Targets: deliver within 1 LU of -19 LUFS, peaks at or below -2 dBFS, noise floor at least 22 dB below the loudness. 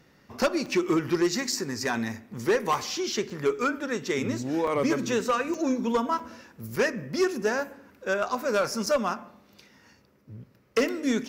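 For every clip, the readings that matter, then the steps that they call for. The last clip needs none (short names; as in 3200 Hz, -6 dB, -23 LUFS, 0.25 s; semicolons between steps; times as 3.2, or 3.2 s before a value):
dropouts 8; longest dropout 4.0 ms; loudness -27.5 LUFS; peak -15.5 dBFS; loudness target -19.0 LUFS
-> interpolate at 0.66/1.52/3.3/4.67/5.54/6.19/6.76/8.86, 4 ms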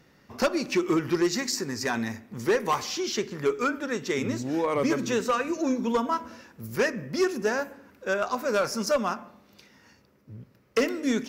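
dropouts 0; loudness -27.5 LUFS; peak -15.5 dBFS; loudness target -19.0 LUFS
-> gain +8.5 dB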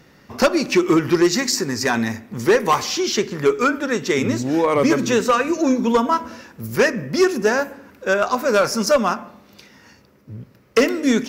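loudness -19.0 LUFS; peak -7.0 dBFS; noise floor -51 dBFS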